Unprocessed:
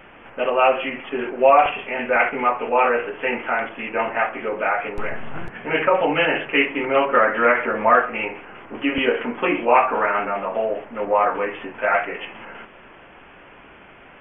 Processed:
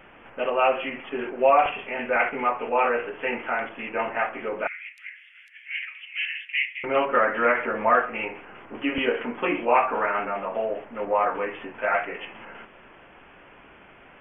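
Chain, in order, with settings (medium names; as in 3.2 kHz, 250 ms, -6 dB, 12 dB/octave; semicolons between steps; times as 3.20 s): 4.67–6.84 s: elliptic high-pass 2 kHz, stop band 60 dB; trim -4.5 dB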